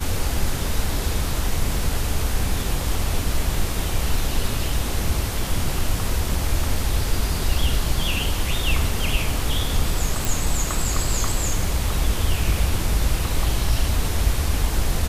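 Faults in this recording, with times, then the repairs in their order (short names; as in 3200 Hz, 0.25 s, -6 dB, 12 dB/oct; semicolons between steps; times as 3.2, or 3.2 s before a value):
10.25 pop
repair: de-click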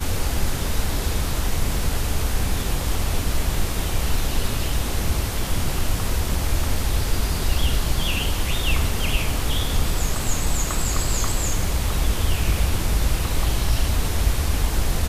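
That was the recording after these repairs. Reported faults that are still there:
none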